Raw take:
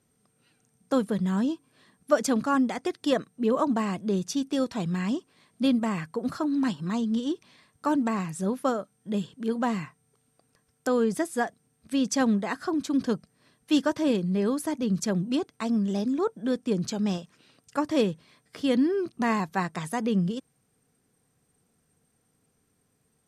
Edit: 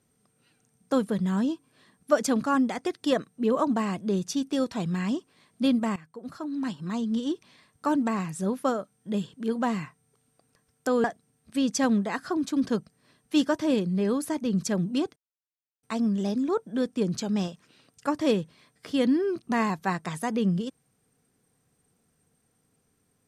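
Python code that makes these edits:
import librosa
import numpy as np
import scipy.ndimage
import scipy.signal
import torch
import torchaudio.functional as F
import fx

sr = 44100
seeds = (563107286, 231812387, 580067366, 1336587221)

y = fx.edit(x, sr, fx.fade_in_from(start_s=5.96, length_s=1.3, floor_db=-17.5),
    fx.cut(start_s=11.04, length_s=0.37),
    fx.insert_silence(at_s=15.53, length_s=0.67), tone=tone)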